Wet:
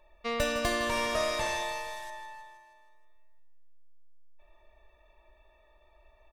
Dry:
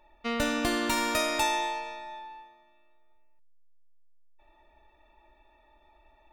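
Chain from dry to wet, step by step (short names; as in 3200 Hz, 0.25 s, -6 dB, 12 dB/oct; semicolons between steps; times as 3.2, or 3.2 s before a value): 0.83–2.1 delta modulation 64 kbps, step -42 dBFS; comb 1.8 ms, depth 66%; feedback echo 0.158 s, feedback 57%, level -11.5 dB; gain -2 dB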